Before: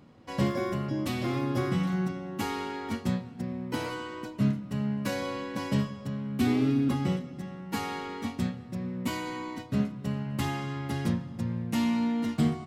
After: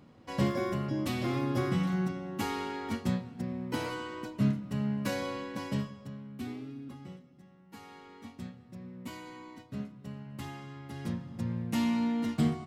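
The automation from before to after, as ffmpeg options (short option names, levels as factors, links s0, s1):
-af "volume=5.31,afade=t=out:st=5.12:d=1.15:silence=0.334965,afade=t=out:st=6.27:d=0.39:silence=0.446684,afade=t=in:st=7.73:d=0.96:silence=0.446684,afade=t=in:st=10.92:d=0.56:silence=0.354813"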